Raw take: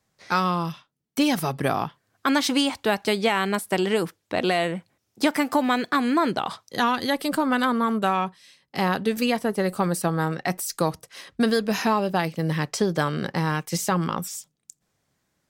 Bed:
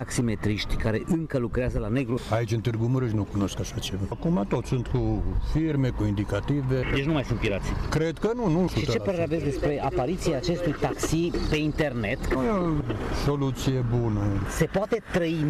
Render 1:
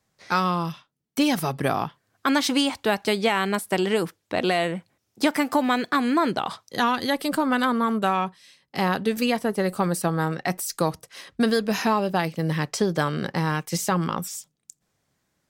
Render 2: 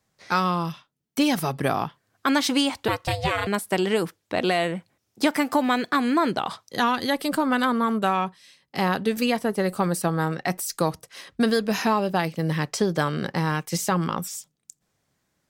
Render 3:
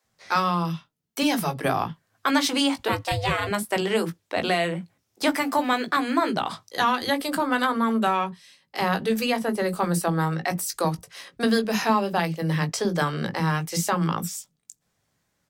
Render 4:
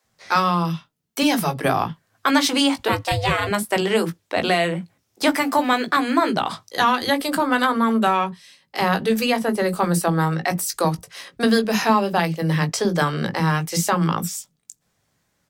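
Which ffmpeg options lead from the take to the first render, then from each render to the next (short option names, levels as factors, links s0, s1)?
-af anull
-filter_complex "[0:a]asettb=1/sr,asplit=3[s0][s1][s2];[s0]atrim=end=2.884[s3];[s1]atrim=start=2.88:end=3.47,asetpts=PTS-STARTPTS,afade=t=in:d=0.004:c=qsin,afade=t=out:st=0.586:d=0.004:c=qsin,aeval=exprs='val(0)*sin(2*PI*300*n/s)':c=same[s4];[s2]atrim=start=3.466[s5];[s3][s4]acrossfade=d=0.004:c1=hsin:c2=qsin[s6];[s6][s5]acrossfade=d=0.004:c1=qsin:c2=hsin"
-filter_complex "[0:a]asplit=2[s0][s1];[s1]adelay=18,volume=0.355[s2];[s0][s2]amix=inputs=2:normalize=0,acrossover=split=320[s3][s4];[s3]adelay=40[s5];[s5][s4]amix=inputs=2:normalize=0"
-af "volume=1.58"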